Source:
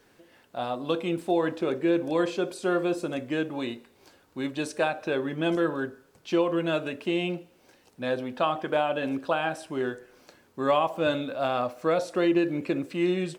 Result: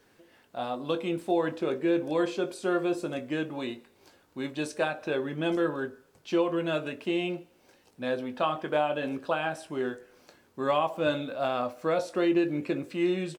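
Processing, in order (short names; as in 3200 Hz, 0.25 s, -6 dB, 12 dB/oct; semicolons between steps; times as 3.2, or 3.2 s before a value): doubler 20 ms -11 dB; gain -2.5 dB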